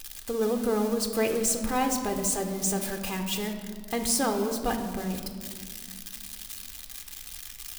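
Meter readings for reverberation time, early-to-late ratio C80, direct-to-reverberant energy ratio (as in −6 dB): 1.9 s, 9.0 dB, 5.5 dB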